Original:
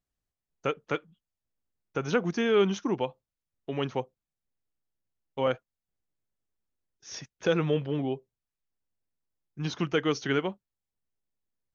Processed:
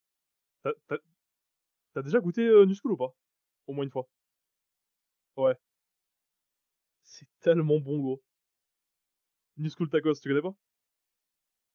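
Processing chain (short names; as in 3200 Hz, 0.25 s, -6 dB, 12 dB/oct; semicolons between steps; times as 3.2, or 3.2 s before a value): in parallel at -10 dB: requantised 8-bit, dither triangular; on the sum: spectral expander 1.5:1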